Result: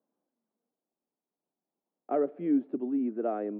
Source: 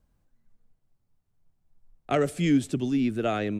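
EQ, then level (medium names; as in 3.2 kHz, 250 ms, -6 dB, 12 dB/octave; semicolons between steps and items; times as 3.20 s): high-pass 250 Hz 24 dB/octave; Butterworth band-pass 410 Hz, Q 0.51; distance through air 380 m; -1.5 dB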